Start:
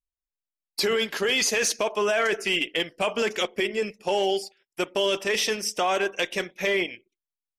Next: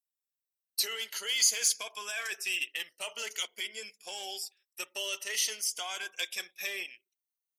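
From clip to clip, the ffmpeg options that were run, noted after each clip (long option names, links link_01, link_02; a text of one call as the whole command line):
ffmpeg -i in.wav -af "afftfilt=real='re*pow(10,10/40*sin(2*PI*(1.8*log(max(b,1)*sr/1024/100)/log(2)-(0.47)*(pts-256)/sr)))':imag='im*pow(10,10/40*sin(2*PI*(1.8*log(max(b,1)*sr/1024/100)/log(2)-(0.47)*(pts-256)/sr)))':win_size=1024:overlap=0.75,aderivative" out.wav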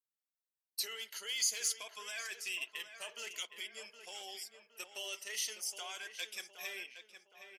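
ffmpeg -i in.wav -filter_complex "[0:a]asplit=2[link_01][link_02];[link_02]adelay=766,lowpass=frequency=2500:poles=1,volume=-8.5dB,asplit=2[link_03][link_04];[link_04]adelay=766,lowpass=frequency=2500:poles=1,volume=0.45,asplit=2[link_05][link_06];[link_06]adelay=766,lowpass=frequency=2500:poles=1,volume=0.45,asplit=2[link_07][link_08];[link_08]adelay=766,lowpass=frequency=2500:poles=1,volume=0.45,asplit=2[link_09][link_10];[link_10]adelay=766,lowpass=frequency=2500:poles=1,volume=0.45[link_11];[link_01][link_03][link_05][link_07][link_09][link_11]amix=inputs=6:normalize=0,volume=-7.5dB" out.wav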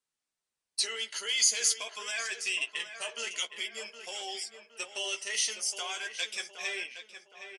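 ffmpeg -i in.wav -filter_complex "[0:a]asplit=2[link_01][link_02];[link_02]adelay=13,volume=-7dB[link_03];[link_01][link_03]amix=inputs=2:normalize=0,aresample=22050,aresample=44100,volume=7.5dB" out.wav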